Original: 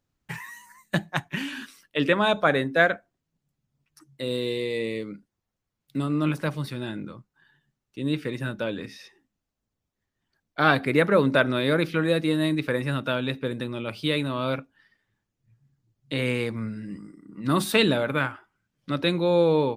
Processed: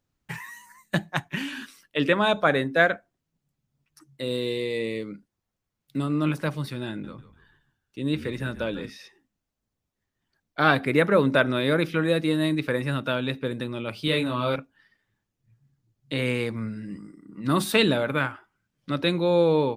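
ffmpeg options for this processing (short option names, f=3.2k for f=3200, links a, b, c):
-filter_complex "[0:a]asettb=1/sr,asplit=3[a][b][c];[a]atrim=end=6.894[d];[b]atrim=start=6.89:end=8.9,asetpts=PTS-STARTPTS,afade=t=in:d=0.004:c=qsin,afade=t=out:st=2.006:d=0.004:c=qsin,asplit=5[e][f][g][h][i];[f]adelay=146,afreqshift=-54,volume=-14dB[j];[g]adelay=292,afreqshift=-108,volume=-22dB[k];[h]adelay=438,afreqshift=-162,volume=-29.9dB[l];[i]adelay=584,afreqshift=-216,volume=-37.9dB[m];[e][j][k][l][m]amix=inputs=5:normalize=0,atrim=end_sample=88641[n];[c]atrim=start=8.896[o];[d][n]acrossfade=d=0.004:c1=hsin:c2=qsin[p];[p][o]acrossfade=d=0.004:c1=qsin:c2=hsin,asettb=1/sr,asplit=3[q][r][s];[q]atrim=end=10.734[t];[r]atrim=start=10.73:end=12.2,asetpts=PTS-STARTPTS,afade=t=in:d=0.004:c=qsin,afade=t=out:st=1.466:d=0.004:c=qsin,bandreject=f=4.4k:w=12[u];[s]atrim=start=12.196[v];[t][u]acrossfade=d=0.004:c1=hsin:c2=qsin[w];[w][v]acrossfade=d=0.004:c1=qsin:c2=hsin,asettb=1/sr,asplit=3[x][y][z];[x]atrim=end=14.054[aa];[y]atrim=start=14.05:end=14.56,asetpts=PTS-STARTPTS,afade=t=in:d=0.004:c=qsin,afade=t=out:st=0.506:d=0.004:c=qsin,asplit=2[ab][ac];[ac]adelay=25,volume=-4dB[ad];[ab][ad]amix=inputs=2:normalize=0,atrim=end_sample=22491[ae];[z]atrim=start=14.556[af];[aa][ae]acrossfade=d=0.004:c1=hsin:c2=qsin[ag];[ag][af]acrossfade=d=0.004:c1=qsin:c2=hsin"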